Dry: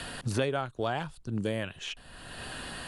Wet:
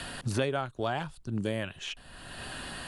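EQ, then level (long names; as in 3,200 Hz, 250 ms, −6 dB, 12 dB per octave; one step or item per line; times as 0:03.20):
notch filter 470 Hz, Q 12
0.0 dB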